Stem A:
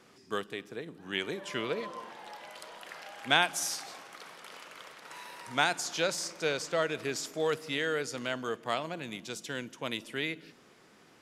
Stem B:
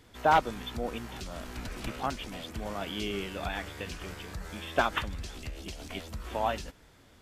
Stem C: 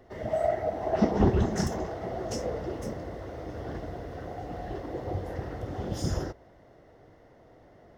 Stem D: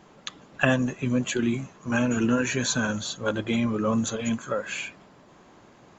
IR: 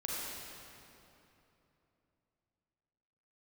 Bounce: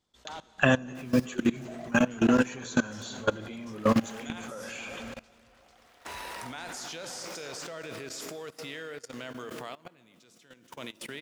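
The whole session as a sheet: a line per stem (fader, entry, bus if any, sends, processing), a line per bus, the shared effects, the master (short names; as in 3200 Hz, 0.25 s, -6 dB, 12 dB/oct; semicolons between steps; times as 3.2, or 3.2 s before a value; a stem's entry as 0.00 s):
-6.5 dB, 0.95 s, send -12 dB, bit-crush 10-bit; backwards sustainer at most 25 dB/s
-17.0 dB, 0.00 s, send -9 dB, band shelf 5300 Hz +10.5 dB
+1.0 dB, 1.35 s, no send, reverb removal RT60 0.63 s; HPF 960 Hz 12 dB/oct
+1.5 dB, 0.00 s, send -11 dB, notches 60/120/180 Hz; gate -48 dBFS, range -22 dB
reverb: on, RT60 3.1 s, pre-delay 34 ms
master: level quantiser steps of 20 dB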